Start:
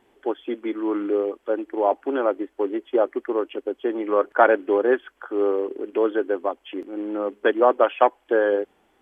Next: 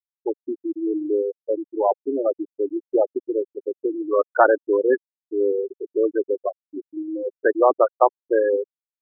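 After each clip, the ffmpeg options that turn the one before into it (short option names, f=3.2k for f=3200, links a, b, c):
-af "afftfilt=real='re*gte(hypot(re,im),0.282)':imag='im*gte(hypot(re,im),0.282)':win_size=1024:overlap=0.75,volume=1dB"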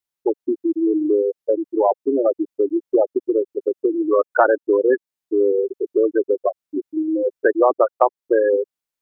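-af "acompressor=threshold=-26dB:ratio=2,volume=8.5dB"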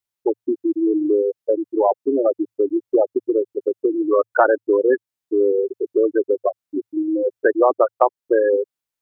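-af "equalizer=f=110:t=o:w=0.22:g=10"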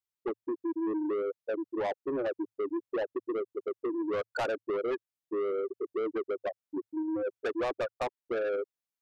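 -af "asoftclip=type=tanh:threshold=-19dB,volume=-8.5dB"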